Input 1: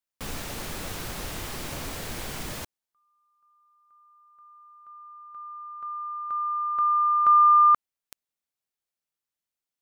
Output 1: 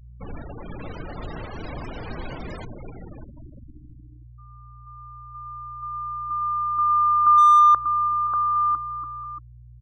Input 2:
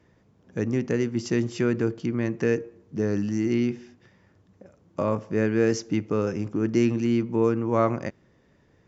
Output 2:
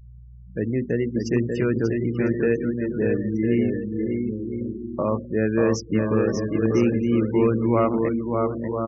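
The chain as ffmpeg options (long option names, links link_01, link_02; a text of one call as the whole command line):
ffmpeg -i in.wav -filter_complex "[0:a]aeval=exprs='val(0)+0.00708*(sin(2*PI*60*n/s)+sin(2*PI*2*60*n/s)/2+sin(2*PI*3*60*n/s)/3+sin(2*PI*4*60*n/s)/4+sin(2*PI*5*60*n/s)/5)':channel_layout=same,asplit=2[link_01][link_02];[link_02]aecho=0:1:590|1003|1292|1494|1636:0.631|0.398|0.251|0.158|0.1[link_03];[link_01][link_03]amix=inputs=2:normalize=0,volume=12dB,asoftclip=hard,volume=-12dB,bandreject=frequency=50:width_type=h:width=6,bandreject=frequency=100:width_type=h:width=6,bandreject=frequency=150:width_type=h:width=6,bandreject=frequency=200:width_type=h:width=6,bandreject=frequency=250:width_type=h:width=6,afftfilt=real='re*gte(hypot(re,im),0.0282)':imag='im*gte(hypot(re,im),0.0282)':win_size=1024:overlap=0.75,volume=1.5dB" out.wav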